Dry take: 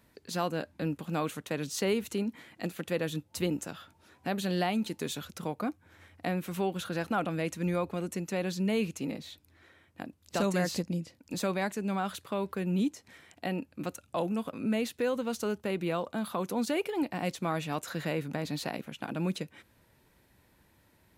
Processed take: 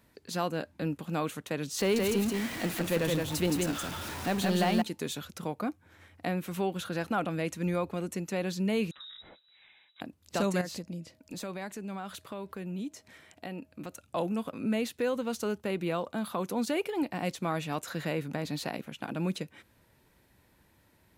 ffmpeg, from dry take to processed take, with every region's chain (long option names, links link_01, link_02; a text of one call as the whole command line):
ffmpeg -i in.wav -filter_complex "[0:a]asettb=1/sr,asplit=3[link_01][link_02][link_03];[link_01]atrim=end=1.794[link_04];[link_02]atrim=start=1.79:end=4.82,asetpts=PTS-STARTPTS,afade=type=in:duration=0.004:curve=qsin,afade=type=out:start_time=3.026:duration=0.004:curve=qsin,aeval=exprs='val(0)+0.5*0.0178*sgn(val(0))':channel_layout=same,aecho=1:1:170:0.708,atrim=end_sample=133623[link_05];[link_03]atrim=start=4.816[link_06];[link_04][link_05]acrossfade=duration=0.004:curve1=hsin:curve2=qsin[link_07];[link_07][link_06]acrossfade=duration=0.004:curve1=qsin:curve2=hsin,asettb=1/sr,asplit=3[link_08][link_09][link_10];[link_08]atrim=end=8.914[link_11];[link_09]atrim=start=8.91:end=10.01,asetpts=PTS-STARTPTS,afade=type=in:duration=0.004:curve=qsin,afade=type=out:start_time=1.096:duration=0.004:curve=qsin,lowpass=frequency=3400:width_type=q:width=0.5098,lowpass=frequency=3400:width_type=q:width=0.6013,lowpass=frequency=3400:width_type=q:width=0.9,lowpass=frequency=3400:width_type=q:width=2.563,afreqshift=-4000,acompressor=threshold=-43dB:ratio=16:attack=3.2:release=140:knee=1:detection=peak[link_12];[link_10]atrim=start=10.006[link_13];[link_11][link_12]acrossfade=duration=0.004:curve1=hsin:curve2=qsin[link_14];[link_14][link_13]acrossfade=duration=0.004:curve1=qsin:curve2=hsin,asettb=1/sr,asplit=3[link_15][link_16][link_17];[link_15]atrim=end=10.614[link_18];[link_16]atrim=start=10.61:end=14.01,asetpts=PTS-STARTPTS,afade=type=in:duration=0.004:curve=qsin,afade=type=out:start_time=3.396:duration=0.004:curve=qsin,acompressor=threshold=-40dB:ratio=2:attack=3.2:release=140:knee=1:detection=peak,aeval=exprs='val(0)+0.000316*sin(2*PI*630*n/s)':channel_layout=same[link_19];[link_17]atrim=start=14.006[link_20];[link_18][link_19]acrossfade=duration=0.004:curve1=hsin:curve2=qsin[link_21];[link_21][link_20]acrossfade=duration=0.004:curve1=qsin:curve2=hsin" out.wav